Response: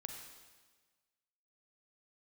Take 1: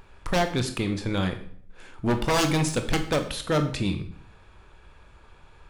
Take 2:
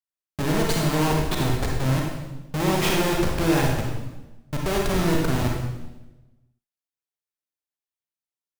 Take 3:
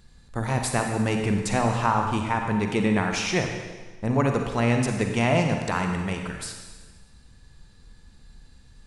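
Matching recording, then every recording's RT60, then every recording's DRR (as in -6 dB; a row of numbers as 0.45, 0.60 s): 3; 0.60, 1.1, 1.4 s; 7.0, -1.5, 3.0 dB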